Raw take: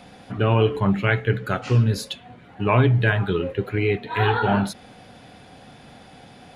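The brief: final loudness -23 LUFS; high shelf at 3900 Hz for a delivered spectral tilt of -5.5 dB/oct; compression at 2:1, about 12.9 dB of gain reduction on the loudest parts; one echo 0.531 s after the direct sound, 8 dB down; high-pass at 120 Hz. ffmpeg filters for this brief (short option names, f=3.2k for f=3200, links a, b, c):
-af "highpass=120,highshelf=f=3.9k:g=-7.5,acompressor=threshold=-40dB:ratio=2,aecho=1:1:531:0.398,volume=12dB"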